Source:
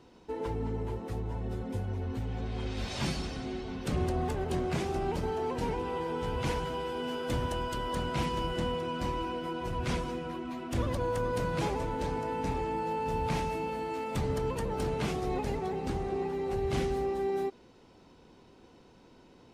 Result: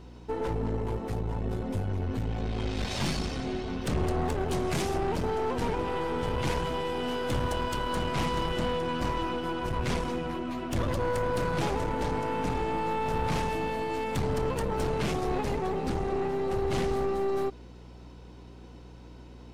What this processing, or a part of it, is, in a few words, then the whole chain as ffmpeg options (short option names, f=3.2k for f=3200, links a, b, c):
valve amplifier with mains hum: -filter_complex "[0:a]aeval=exprs='(tanh(35.5*val(0)+0.55)-tanh(0.55))/35.5':c=same,aeval=exprs='val(0)+0.002*(sin(2*PI*60*n/s)+sin(2*PI*2*60*n/s)/2+sin(2*PI*3*60*n/s)/3+sin(2*PI*4*60*n/s)/4+sin(2*PI*5*60*n/s)/5)':c=same,asettb=1/sr,asplit=3[a][b][c];[a]atrim=end=4.524[d];[b]atrim=start=4.52:end=4.94,asetpts=PTS-STARTPTS,afade=t=in:d=0.004:c=qsin,afade=t=out:st=0.416:d=0.004:c=qsin,aemphasis=mode=production:type=cd[e];[c]atrim=start=4.936[f];[d][e]acrossfade=d=0.004:c1=hsin:c2=qsin[g];[g][f]acrossfade=d=0.004:c1=qsin:c2=hsin,volume=7dB"